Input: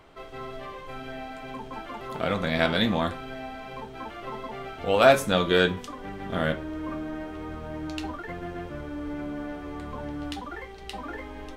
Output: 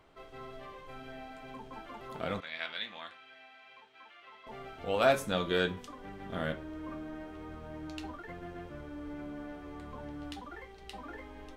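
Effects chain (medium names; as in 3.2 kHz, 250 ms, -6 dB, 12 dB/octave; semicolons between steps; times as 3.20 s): 2.40–4.47 s: band-pass filter 2.6 kHz, Q 1.2; trim -8.5 dB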